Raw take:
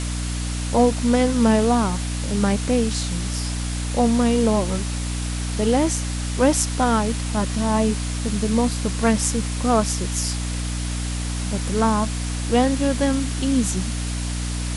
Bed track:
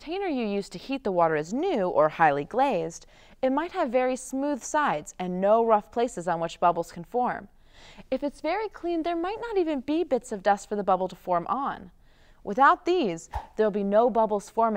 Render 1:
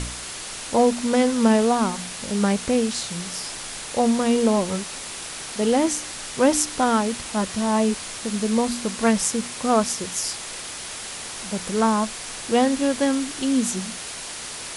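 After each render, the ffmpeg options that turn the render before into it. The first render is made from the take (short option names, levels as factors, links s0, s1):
-af "bandreject=f=60:t=h:w=4,bandreject=f=120:t=h:w=4,bandreject=f=180:t=h:w=4,bandreject=f=240:t=h:w=4,bandreject=f=300:t=h:w=4"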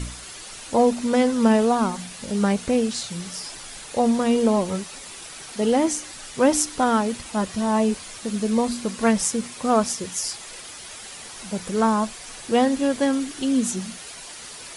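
-af "afftdn=nr=8:nf=-35"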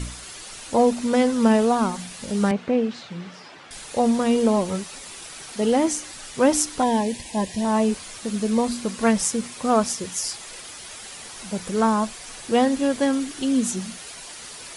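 -filter_complex "[0:a]asettb=1/sr,asplit=3[s0][s1][s2];[s0]atrim=end=2.514[s3];[s1]atrim=start=2.51:end=3.71,asetpts=PTS-STARTPTS,afade=t=in:d=0.004:c=qsin,afade=t=out:st=1.196:d=0.004:c=qsin,highpass=150,lowpass=2500[s4];[s2]atrim=start=3.706[s5];[s3][s4]acrossfade=d=0.004:c1=hsin:c2=qsin[s6];[s6][s5]acrossfade=d=0.004:c1=qsin:c2=hsin,asettb=1/sr,asplit=3[s7][s8][s9];[s7]atrim=end=6.824[s10];[s8]atrim=start=6.82:end=7.65,asetpts=PTS-STARTPTS,afade=t=in:d=0.004:c=qsin,afade=t=out:st=0.826:d=0.004:c=qsin,asuperstop=centerf=1300:order=12:qfactor=2.4[s11];[s9]atrim=start=7.646[s12];[s10][s11]acrossfade=d=0.004:c1=hsin:c2=qsin[s13];[s13][s12]acrossfade=d=0.004:c1=qsin:c2=hsin"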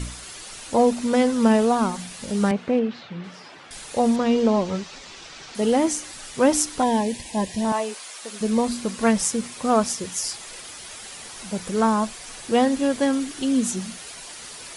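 -filter_complex "[0:a]asettb=1/sr,asplit=3[s0][s1][s2];[s0]atrim=end=2.794[s3];[s1]atrim=start=2.79:end=3.24,asetpts=PTS-STARTPTS,afade=t=in:d=0.004:c=qsin,afade=t=out:st=0.446:d=0.004:c=qsin,lowpass=3900[s4];[s2]atrim=start=3.236[s5];[s3][s4]acrossfade=d=0.004:c1=hsin:c2=qsin[s6];[s6][s5]acrossfade=d=0.004:c1=qsin:c2=hsin,asettb=1/sr,asplit=3[s7][s8][s9];[s7]atrim=end=4.164[s10];[s8]atrim=start=4.16:end=5.55,asetpts=PTS-STARTPTS,afade=t=in:d=0.004:c=qsin,afade=t=out:st=1.386:d=0.004:c=qsin,lowpass=f=6200:w=0.5412,lowpass=f=6200:w=1.3066[s11];[s9]atrim=start=5.546[s12];[s10][s11]acrossfade=d=0.004:c1=hsin:c2=qsin[s13];[s13][s12]acrossfade=d=0.004:c1=qsin:c2=hsin,asettb=1/sr,asplit=3[s14][s15][s16];[s14]atrim=end=7.724[s17];[s15]atrim=start=7.72:end=8.41,asetpts=PTS-STARTPTS,afade=t=in:d=0.004:c=qsin,afade=t=out:st=0.686:d=0.004:c=qsin,highpass=540[s18];[s16]atrim=start=8.406[s19];[s17][s18]acrossfade=d=0.004:c1=hsin:c2=qsin[s20];[s20][s19]acrossfade=d=0.004:c1=qsin:c2=hsin"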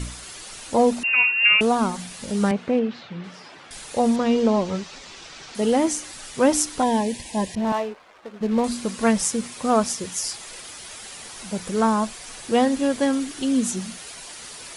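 -filter_complex "[0:a]asettb=1/sr,asplit=3[s0][s1][s2];[s0]atrim=end=1.034[s3];[s1]atrim=start=1.03:end=1.61,asetpts=PTS-STARTPTS,afade=t=in:d=0.004:c=qsin,afade=t=out:st=0.576:d=0.004:c=qsin,lowpass=f=2600:t=q:w=0.5098,lowpass=f=2600:t=q:w=0.6013,lowpass=f=2600:t=q:w=0.9,lowpass=f=2600:t=q:w=2.563,afreqshift=-3000[s4];[s2]atrim=start=1.606[s5];[s3][s4]acrossfade=d=0.004:c1=hsin:c2=qsin[s6];[s6][s5]acrossfade=d=0.004:c1=qsin:c2=hsin,asettb=1/sr,asplit=3[s7][s8][s9];[s7]atrim=end=7.554[s10];[s8]atrim=start=7.55:end=8.64,asetpts=PTS-STARTPTS,afade=t=in:d=0.004:c=qsin,afade=t=out:st=1.086:d=0.004:c=qsin,adynamicsmooth=sensitivity=4:basefreq=840[s11];[s9]atrim=start=8.636[s12];[s10][s11]acrossfade=d=0.004:c1=hsin:c2=qsin[s13];[s13][s12]acrossfade=d=0.004:c1=qsin:c2=hsin"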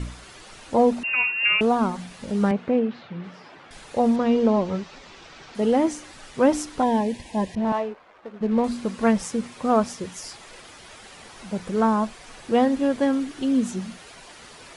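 -af "lowpass=f=2000:p=1"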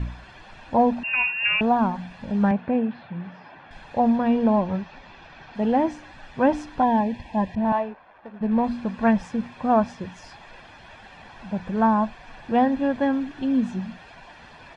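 -af "lowpass=2700,aecho=1:1:1.2:0.52"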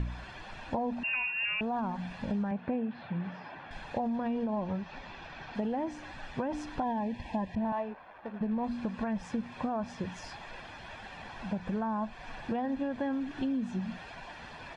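-af "alimiter=limit=0.158:level=0:latency=1:release=28,acompressor=threshold=0.0316:ratio=6"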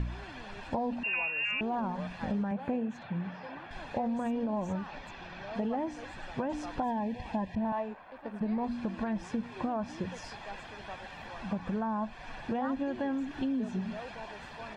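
-filter_complex "[1:a]volume=0.0708[s0];[0:a][s0]amix=inputs=2:normalize=0"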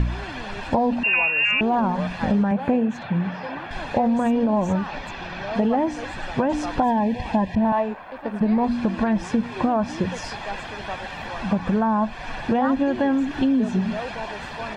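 -af "volume=3.98"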